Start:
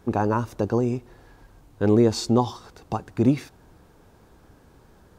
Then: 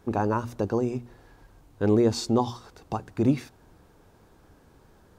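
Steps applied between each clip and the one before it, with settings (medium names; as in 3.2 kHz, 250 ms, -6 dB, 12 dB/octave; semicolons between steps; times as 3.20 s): hum notches 60/120/180/240 Hz; trim -2.5 dB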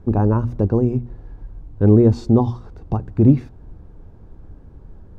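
tilt EQ -4.5 dB/octave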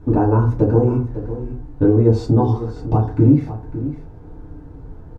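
compression 5:1, threshold -16 dBFS, peak gain reduction 9 dB; delay 553 ms -12.5 dB; FDN reverb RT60 0.4 s, low-frequency decay 0.75×, high-frequency decay 0.45×, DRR -5.5 dB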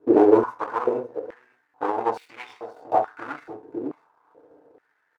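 median filter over 9 samples; power-law waveshaper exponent 1.4; step-sequenced high-pass 2.3 Hz 390–2300 Hz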